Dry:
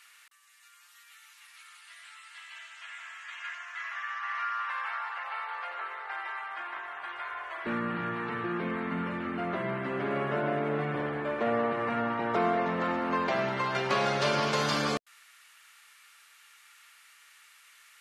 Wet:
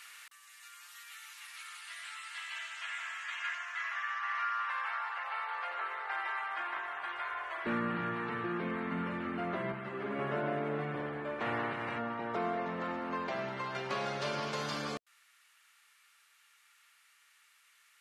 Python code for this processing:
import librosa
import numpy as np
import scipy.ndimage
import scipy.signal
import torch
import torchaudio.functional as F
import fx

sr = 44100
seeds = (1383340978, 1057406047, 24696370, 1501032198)

y = fx.ensemble(x, sr, at=(9.72, 10.19))
y = fx.spec_clip(y, sr, under_db=15, at=(11.39, 11.97), fade=0.02)
y = fx.rider(y, sr, range_db=10, speed_s=2.0)
y = F.gain(torch.from_numpy(y), -5.0).numpy()